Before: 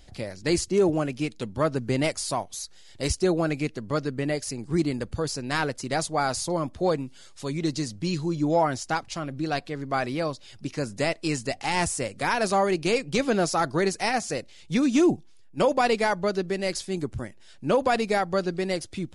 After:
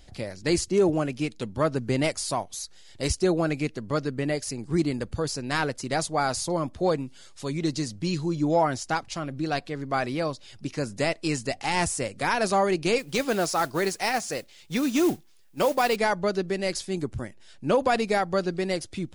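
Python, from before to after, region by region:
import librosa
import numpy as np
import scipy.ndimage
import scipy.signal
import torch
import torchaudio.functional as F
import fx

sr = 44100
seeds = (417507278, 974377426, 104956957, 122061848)

y = fx.chain(x, sr, fx.low_shelf(hz=280.0, db=-6.5),
    fx.mod_noise(seeds[0], snr_db=19), at=(12.98, 15.96))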